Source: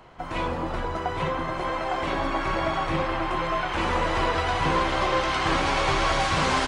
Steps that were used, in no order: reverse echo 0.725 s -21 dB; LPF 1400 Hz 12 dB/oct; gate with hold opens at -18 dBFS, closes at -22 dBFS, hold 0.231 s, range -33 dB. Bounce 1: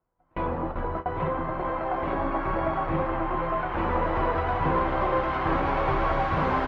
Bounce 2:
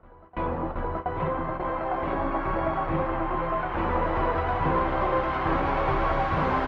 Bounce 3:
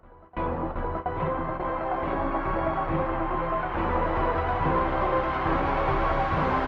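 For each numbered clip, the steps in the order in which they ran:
reverse echo > gate with hold > LPF; gate with hold > reverse echo > LPF; gate with hold > LPF > reverse echo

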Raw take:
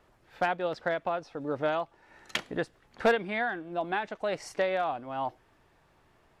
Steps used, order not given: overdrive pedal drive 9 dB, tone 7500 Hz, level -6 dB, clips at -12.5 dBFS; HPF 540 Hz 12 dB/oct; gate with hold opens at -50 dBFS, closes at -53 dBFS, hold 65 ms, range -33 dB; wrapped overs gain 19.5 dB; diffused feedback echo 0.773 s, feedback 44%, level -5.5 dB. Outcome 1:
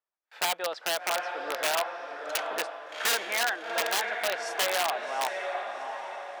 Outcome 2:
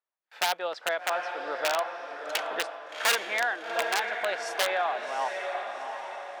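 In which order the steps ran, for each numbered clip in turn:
diffused feedback echo > gate with hold > overdrive pedal > wrapped overs > HPF; gate with hold > diffused feedback echo > wrapped overs > overdrive pedal > HPF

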